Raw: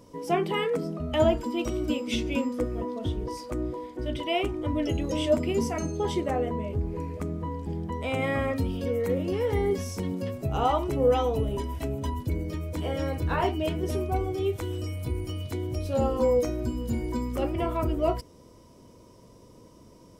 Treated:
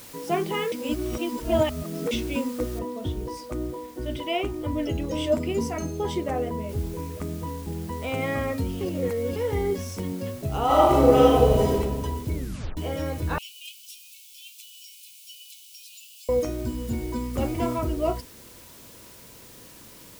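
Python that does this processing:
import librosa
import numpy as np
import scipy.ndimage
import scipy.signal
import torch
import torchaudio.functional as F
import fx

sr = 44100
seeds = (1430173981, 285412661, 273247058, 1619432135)

y = fx.noise_floor_step(x, sr, seeds[0], at_s=2.79, before_db=-46, after_db=-63, tilt_db=0.0)
y = fx.high_shelf(y, sr, hz=10000.0, db=-12.0, at=(4.37, 5.14))
y = fx.noise_floor_step(y, sr, seeds[1], at_s=6.69, before_db=-55, after_db=-49, tilt_db=0.0)
y = fx.reverb_throw(y, sr, start_s=10.65, length_s=1.08, rt60_s=1.5, drr_db=-7.5)
y = fx.steep_highpass(y, sr, hz=2500.0, slope=96, at=(13.38, 16.29))
y = fx.echo_throw(y, sr, start_s=16.9, length_s=0.41, ms=470, feedback_pct=15, wet_db=-1.0)
y = fx.edit(y, sr, fx.reverse_span(start_s=0.72, length_s=1.39),
    fx.reverse_span(start_s=8.81, length_s=0.55),
    fx.tape_stop(start_s=12.35, length_s=0.42), tone=tone)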